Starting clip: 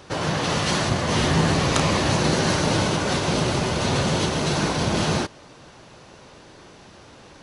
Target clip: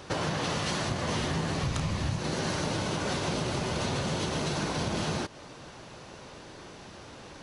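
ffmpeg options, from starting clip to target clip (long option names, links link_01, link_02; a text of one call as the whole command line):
ffmpeg -i in.wav -filter_complex "[0:a]asplit=3[link_01][link_02][link_03];[link_01]afade=type=out:start_time=1.62:duration=0.02[link_04];[link_02]asubboost=boost=6:cutoff=180,afade=type=in:start_time=1.62:duration=0.02,afade=type=out:start_time=2.18:duration=0.02[link_05];[link_03]afade=type=in:start_time=2.18:duration=0.02[link_06];[link_04][link_05][link_06]amix=inputs=3:normalize=0,acompressor=threshold=-27dB:ratio=10" out.wav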